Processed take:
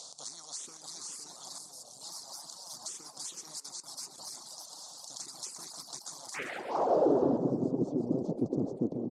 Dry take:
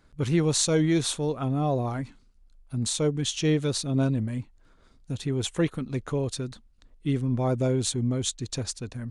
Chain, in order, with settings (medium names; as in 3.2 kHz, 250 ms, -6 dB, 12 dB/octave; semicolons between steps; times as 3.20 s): spectral levelling over time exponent 0.2; ever faster or slower copies 650 ms, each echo +2 st, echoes 3; high-order bell 2.4 kHz -16 dB; de-hum 94.08 Hz, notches 2; reverb removal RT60 1.1 s; 1.58–2.01 s: FFT filter 330 Hz 0 dB, 2 kHz -17 dB, 9.4 kHz -2 dB; 3.60–4.18 s: level held to a coarse grid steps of 21 dB; 6.34–7.37 s: overdrive pedal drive 33 dB, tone 2.1 kHz, clips at -8.5 dBFS; band-pass sweep 3.8 kHz -> 250 Hz, 6.16–7.34 s; touch-sensitive phaser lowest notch 260 Hz, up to 2.2 kHz, full sweep at -24 dBFS; on a send: frequency-shifting echo 131 ms, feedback 35%, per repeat +120 Hz, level -12.5 dB; on the sum: harmonic-percussive split harmonic -10 dB